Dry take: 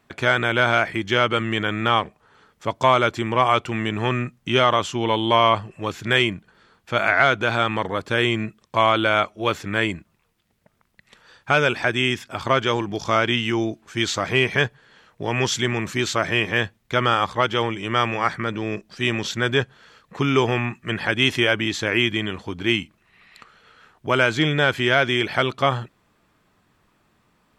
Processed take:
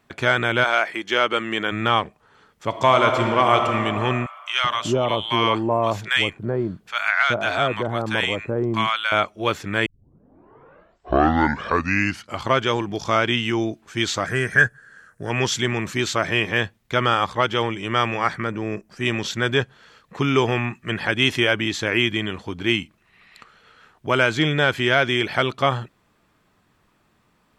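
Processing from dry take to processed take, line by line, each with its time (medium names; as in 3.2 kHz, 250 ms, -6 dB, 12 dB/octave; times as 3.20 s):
0.63–1.71 s: high-pass 530 Hz -> 200 Hz
2.68–3.69 s: reverb throw, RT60 3 s, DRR 3.5 dB
4.26–9.12 s: bands offset in time highs, lows 380 ms, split 940 Hz
9.86 s: tape start 2.69 s
14.26–15.30 s: FFT filter 130 Hz 0 dB, 340 Hz -4 dB, 640 Hz -4 dB, 940 Hz -10 dB, 1.6 kHz +11 dB, 2.2 kHz -9 dB, 3.6 kHz -12 dB, 6.3 kHz +2 dB, 9.5 kHz +10 dB, 13 kHz -2 dB
18.47–19.06 s: peaking EQ 3.7 kHz -11.5 dB 0.8 oct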